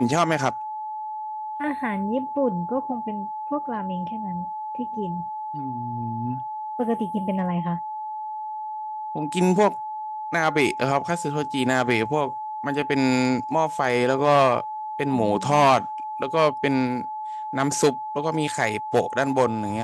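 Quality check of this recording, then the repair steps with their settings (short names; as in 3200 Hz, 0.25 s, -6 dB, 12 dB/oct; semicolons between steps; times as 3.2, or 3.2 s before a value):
tone 860 Hz -29 dBFS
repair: notch 860 Hz, Q 30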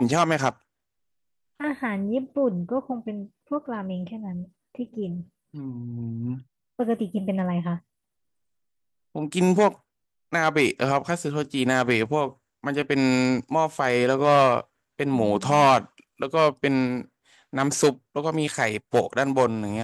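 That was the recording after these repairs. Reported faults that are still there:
none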